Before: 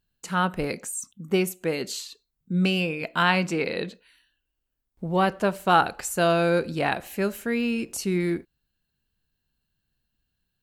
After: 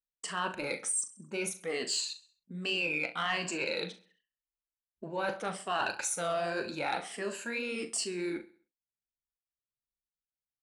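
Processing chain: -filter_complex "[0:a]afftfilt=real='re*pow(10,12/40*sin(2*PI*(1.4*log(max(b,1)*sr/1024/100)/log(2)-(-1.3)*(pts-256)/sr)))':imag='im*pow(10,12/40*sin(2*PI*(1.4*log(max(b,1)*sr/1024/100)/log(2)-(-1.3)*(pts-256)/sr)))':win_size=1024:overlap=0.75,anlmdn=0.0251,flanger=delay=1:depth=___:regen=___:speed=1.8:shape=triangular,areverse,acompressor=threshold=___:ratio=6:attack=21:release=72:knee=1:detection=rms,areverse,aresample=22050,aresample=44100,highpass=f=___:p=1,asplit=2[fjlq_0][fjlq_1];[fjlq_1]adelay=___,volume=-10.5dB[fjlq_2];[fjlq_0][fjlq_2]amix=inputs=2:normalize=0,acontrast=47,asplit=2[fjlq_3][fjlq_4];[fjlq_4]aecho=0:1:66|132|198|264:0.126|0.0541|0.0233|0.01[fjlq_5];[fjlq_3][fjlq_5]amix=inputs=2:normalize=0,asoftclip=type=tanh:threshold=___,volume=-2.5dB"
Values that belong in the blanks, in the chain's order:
8.4, -56, -32dB, 610, 40, -15.5dB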